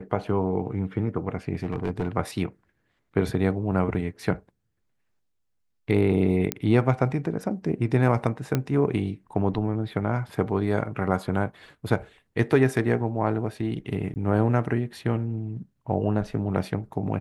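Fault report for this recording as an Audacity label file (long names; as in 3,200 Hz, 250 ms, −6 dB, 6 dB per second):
1.540000	2.090000	clipping −21 dBFS
6.520000	6.520000	click −7 dBFS
8.550000	8.550000	click −11 dBFS
14.140000	14.160000	drop-out 19 ms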